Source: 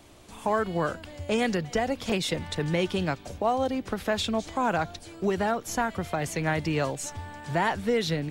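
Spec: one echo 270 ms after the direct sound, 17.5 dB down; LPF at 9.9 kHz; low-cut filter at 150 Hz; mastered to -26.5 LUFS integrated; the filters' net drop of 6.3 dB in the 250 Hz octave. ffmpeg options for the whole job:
-af "highpass=150,lowpass=9900,equalizer=f=250:t=o:g=-7.5,aecho=1:1:270:0.133,volume=1.5"

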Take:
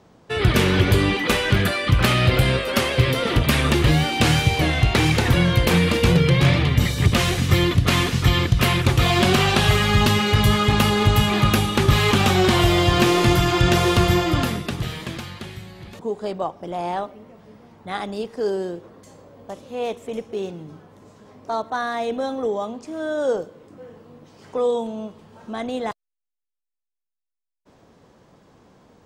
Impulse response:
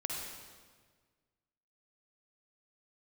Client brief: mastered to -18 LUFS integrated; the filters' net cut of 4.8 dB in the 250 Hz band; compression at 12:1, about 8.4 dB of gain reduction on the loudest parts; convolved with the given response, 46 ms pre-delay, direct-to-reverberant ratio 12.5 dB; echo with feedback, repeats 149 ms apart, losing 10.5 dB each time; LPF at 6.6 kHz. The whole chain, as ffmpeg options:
-filter_complex "[0:a]lowpass=6600,equalizer=f=250:t=o:g=-8,acompressor=threshold=0.0891:ratio=12,aecho=1:1:149|298|447:0.299|0.0896|0.0269,asplit=2[s0][s1];[1:a]atrim=start_sample=2205,adelay=46[s2];[s1][s2]afir=irnorm=-1:irlink=0,volume=0.178[s3];[s0][s3]amix=inputs=2:normalize=0,volume=2.51"

